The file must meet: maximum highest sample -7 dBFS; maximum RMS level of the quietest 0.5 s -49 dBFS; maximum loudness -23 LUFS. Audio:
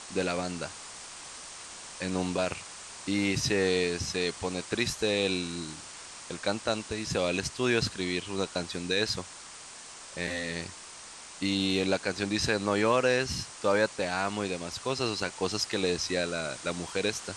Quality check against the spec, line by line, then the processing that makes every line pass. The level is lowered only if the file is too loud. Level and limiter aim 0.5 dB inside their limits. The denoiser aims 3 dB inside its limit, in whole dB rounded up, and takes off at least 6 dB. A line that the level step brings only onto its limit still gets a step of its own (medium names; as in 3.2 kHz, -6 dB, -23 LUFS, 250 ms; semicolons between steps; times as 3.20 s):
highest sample -12.0 dBFS: pass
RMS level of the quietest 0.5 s -46 dBFS: fail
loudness -30.0 LUFS: pass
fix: noise reduction 6 dB, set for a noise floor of -46 dBFS